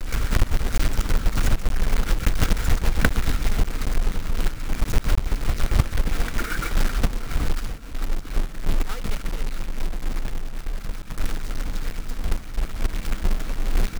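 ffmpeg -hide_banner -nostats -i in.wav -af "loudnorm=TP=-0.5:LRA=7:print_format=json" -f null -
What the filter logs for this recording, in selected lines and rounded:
"input_i" : "-28.3",
"input_tp" : "-2.9",
"input_lra" : "6.9",
"input_thresh" : "-38.3",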